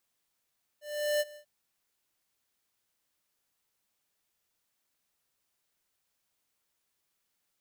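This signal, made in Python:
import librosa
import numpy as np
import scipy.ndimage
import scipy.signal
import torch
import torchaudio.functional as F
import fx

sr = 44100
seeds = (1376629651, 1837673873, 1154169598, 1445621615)

y = fx.adsr_tone(sr, wave='square', hz=594.0, attack_ms=394.0, decay_ms=36.0, sustain_db=-21.5, held_s=0.55, release_ms=90.0, level_db=-27.0)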